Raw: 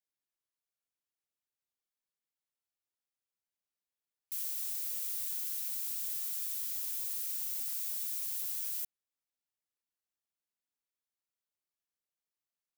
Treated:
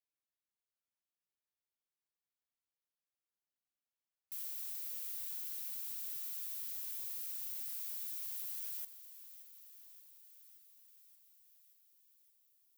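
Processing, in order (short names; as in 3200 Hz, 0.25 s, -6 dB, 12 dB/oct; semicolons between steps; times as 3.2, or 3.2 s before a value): bell 7800 Hz -4.5 dB 1.2 oct; hard clip -30.5 dBFS, distortion -23 dB; thinning echo 0.576 s, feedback 71%, high-pass 420 Hz, level -14.5 dB; gain -5 dB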